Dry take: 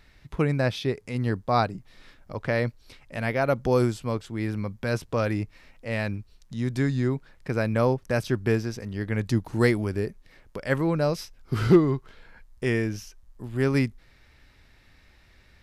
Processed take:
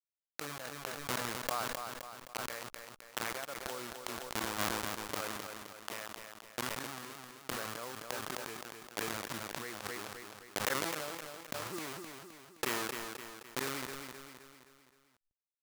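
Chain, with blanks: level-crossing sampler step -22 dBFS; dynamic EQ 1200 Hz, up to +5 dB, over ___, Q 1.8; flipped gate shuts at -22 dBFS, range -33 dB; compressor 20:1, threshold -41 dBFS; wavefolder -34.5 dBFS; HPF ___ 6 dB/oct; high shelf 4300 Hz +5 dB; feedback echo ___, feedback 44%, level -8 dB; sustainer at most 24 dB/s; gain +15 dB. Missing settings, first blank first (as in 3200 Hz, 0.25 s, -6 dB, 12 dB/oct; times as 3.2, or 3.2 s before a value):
-44 dBFS, 900 Hz, 0.26 s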